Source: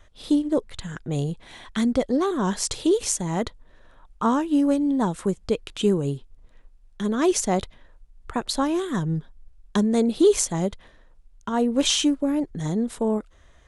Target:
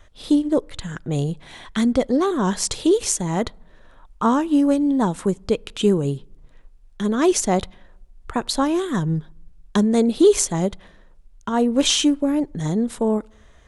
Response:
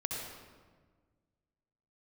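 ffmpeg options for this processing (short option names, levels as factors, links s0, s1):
-filter_complex "[0:a]asplit=2[s0][s1];[1:a]atrim=start_sample=2205,asetrate=88200,aresample=44100,lowpass=3000[s2];[s1][s2]afir=irnorm=-1:irlink=0,volume=0.0562[s3];[s0][s3]amix=inputs=2:normalize=0,volume=1.41"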